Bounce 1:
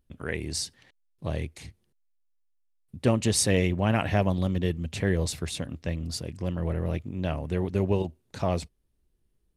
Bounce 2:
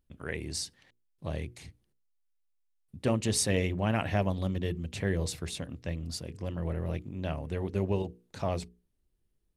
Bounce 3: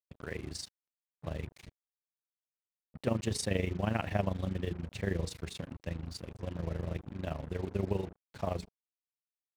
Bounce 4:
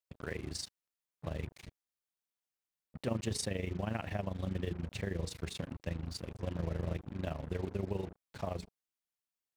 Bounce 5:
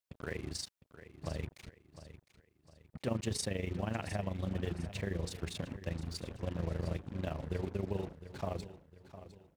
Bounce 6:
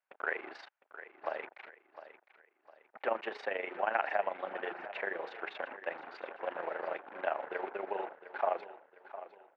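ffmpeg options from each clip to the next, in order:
-af "bandreject=f=60:t=h:w=6,bandreject=f=120:t=h:w=6,bandreject=f=180:t=h:w=6,bandreject=f=240:t=h:w=6,bandreject=f=300:t=h:w=6,bandreject=f=360:t=h:w=6,bandreject=f=420:t=h:w=6,bandreject=f=480:t=h:w=6,volume=-4dB"
-af "tremolo=f=25:d=0.788,acrusher=bits=7:mix=0:aa=0.5,highshelf=f=6k:g=-9"
-af "alimiter=limit=-24dB:level=0:latency=1:release=238,volume=1dB"
-af "aecho=1:1:707|1414|2121|2828:0.2|0.0758|0.0288|0.0109"
-af "highpass=f=480:w=0.5412,highpass=f=480:w=1.3066,equalizer=f=480:t=q:w=4:g=-4,equalizer=f=810:t=q:w=4:g=6,equalizer=f=1.5k:t=q:w=4:g=6,lowpass=f=2.4k:w=0.5412,lowpass=f=2.4k:w=1.3066,volume=8dB"

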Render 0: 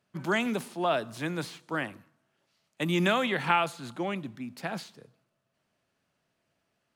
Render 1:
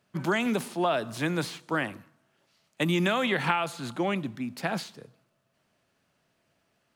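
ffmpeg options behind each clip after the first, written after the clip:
-af "acompressor=threshold=-27dB:ratio=6,volume=5dB"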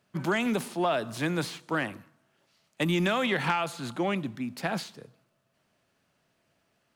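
-af "asoftclip=type=tanh:threshold=-15dB"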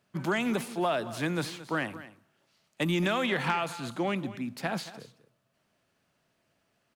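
-af "aecho=1:1:223:0.168,volume=-1.5dB"

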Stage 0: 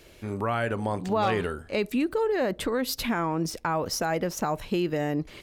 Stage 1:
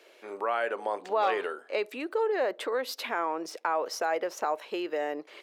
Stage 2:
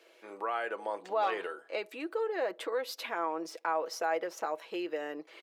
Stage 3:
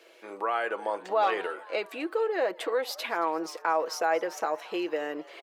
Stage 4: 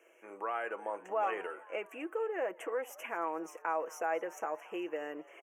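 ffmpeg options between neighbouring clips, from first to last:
-af "highpass=f=410:w=0.5412,highpass=f=410:w=1.3066,highshelf=f=5.1k:g=-12"
-af "aecho=1:1:6.1:0.46,volume=-5dB"
-filter_complex "[0:a]asplit=6[a][b][c][d][e][f];[b]adelay=225,afreqshift=110,volume=-21.5dB[g];[c]adelay=450,afreqshift=220,volume=-25.9dB[h];[d]adelay=675,afreqshift=330,volume=-30.4dB[i];[e]adelay=900,afreqshift=440,volume=-34.8dB[j];[f]adelay=1125,afreqshift=550,volume=-39.2dB[k];[a][g][h][i][j][k]amix=inputs=6:normalize=0,volume=5dB"
-af "asuperstop=centerf=4200:order=8:qfactor=1.4,volume=-7.5dB"

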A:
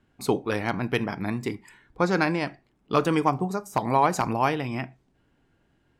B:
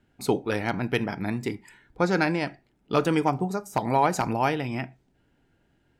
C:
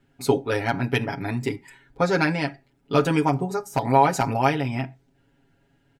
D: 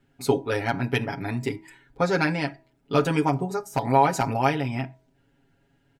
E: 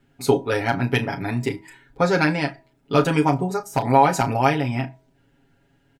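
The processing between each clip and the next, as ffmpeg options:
-af "bandreject=f=1.1k:w=6.8"
-af "aecho=1:1:7.3:0.97"
-af "bandreject=f=322.1:t=h:w=4,bandreject=f=644.2:t=h:w=4,bandreject=f=966.3:t=h:w=4,volume=-1.5dB"
-filter_complex "[0:a]asplit=2[a][b];[b]adelay=33,volume=-12dB[c];[a][c]amix=inputs=2:normalize=0,volume=3.5dB"

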